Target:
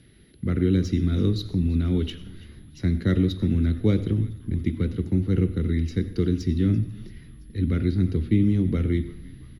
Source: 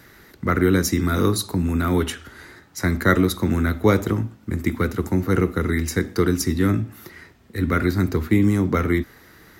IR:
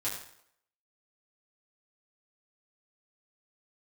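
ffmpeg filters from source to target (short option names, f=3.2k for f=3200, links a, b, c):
-filter_complex "[0:a]aeval=exprs='val(0)+0.0447*sin(2*PI*11000*n/s)':c=same,firequalizer=gain_entry='entry(150,0);entry(960,-24);entry(3100,-2);entry(9100,-29);entry(13000,-24)':delay=0.05:min_phase=1,adynamicsmooth=sensitivity=5.5:basefreq=7k,asplit=6[a][b][c][d][e][f];[b]adelay=336,afreqshift=-78,volume=-20dB[g];[c]adelay=672,afreqshift=-156,volume=-24.2dB[h];[d]adelay=1008,afreqshift=-234,volume=-28.3dB[i];[e]adelay=1344,afreqshift=-312,volume=-32.5dB[j];[f]adelay=1680,afreqshift=-390,volume=-36.6dB[k];[a][g][h][i][j][k]amix=inputs=6:normalize=0,asplit=2[l][m];[1:a]atrim=start_sample=2205,adelay=85[n];[m][n]afir=irnorm=-1:irlink=0,volume=-20dB[o];[l][o]amix=inputs=2:normalize=0"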